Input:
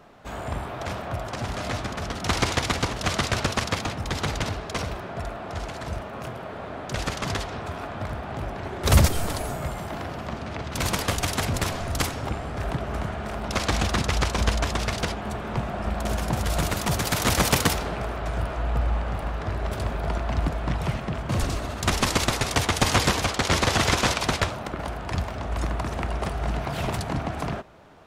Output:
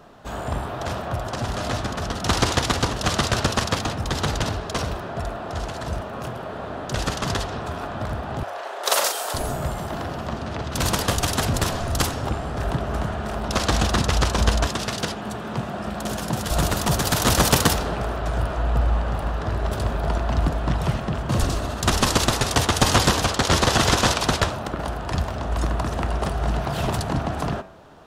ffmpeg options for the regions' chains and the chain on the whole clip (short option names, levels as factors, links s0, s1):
-filter_complex "[0:a]asettb=1/sr,asplit=3[s0][s1][s2];[s0]atrim=end=8.434[s3];[s1]atrim=start=8.43:end=9.34,asetpts=PTS-STARTPTS,afade=t=in:d=0.004:c=qsin,afade=t=out:st=0.906:d=0.004:c=qsin,highpass=f=520:w=0.5412,highpass=f=520:w=1.3066,asoftclip=type=hard:threshold=0.335,asplit=2[s4][s5];[s5]adelay=40,volume=0.531[s6];[s4][s6]amix=inputs=2:normalize=0,atrim=end_sample=40131[s7];[s2]atrim=start=9.336[s8];[s3][s7]acrossfade=d=0.004:c1=hsin:c2=qsin[s9];[s9][s8]acrossfade=d=0.004:c1=qsin:c2=hsin,asettb=1/sr,asplit=3[s10][s11][s12];[s10]atrim=end=14.674[s13];[s11]atrim=start=14.67:end=16.51,asetpts=PTS-STARTPTS,afade=t=in:d=0.004:c=qsin,afade=t=out:st=1.836:d=0.004:c=qsin,highpass=130,equalizer=f=730:t=o:w=2.2:g=-3.5[s14];[s12]atrim=start=16.506[s15];[s13][s14]acrossfade=d=0.004:c1=hsin:c2=qsin[s16];[s16][s15]acrossfade=d=0.004:c1=qsin:c2=hsin,equalizer=f=2200:w=4.1:g=-7,bandreject=f=93.84:t=h:w=4,bandreject=f=187.68:t=h:w=4,bandreject=f=281.52:t=h:w=4,bandreject=f=375.36:t=h:w=4,bandreject=f=469.2:t=h:w=4,bandreject=f=563.04:t=h:w=4,bandreject=f=656.88:t=h:w=4,bandreject=f=750.72:t=h:w=4,bandreject=f=844.56:t=h:w=4,bandreject=f=938.4:t=h:w=4,bandreject=f=1032.24:t=h:w=4,bandreject=f=1126.08:t=h:w=4,bandreject=f=1219.92:t=h:w=4,bandreject=f=1313.76:t=h:w=4,bandreject=f=1407.6:t=h:w=4,bandreject=f=1501.44:t=h:w=4,bandreject=f=1595.28:t=h:w=4,bandreject=f=1689.12:t=h:w=4,bandreject=f=1782.96:t=h:w=4,bandreject=f=1876.8:t=h:w=4,bandreject=f=1970.64:t=h:w=4,bandreject=f=2064.48:t=h:w=4,bandreject=f=2158.32:t=h:w=4,bandreject=f=2252.16:t=h:w=4,bandreject=f=2346:t=h:w=4,bandreject=f=2439.84:t=h:w=4,bandreject=f=2533.68:t=h:w=4,bandreject=f=2627.52:t=h:w=4,bandreject=f=2721.36:t=h:w=4,bandreject=f=2815.2:t=h:w=4,bandreject=f=2909.04:t=h:w=4,volume=1.58"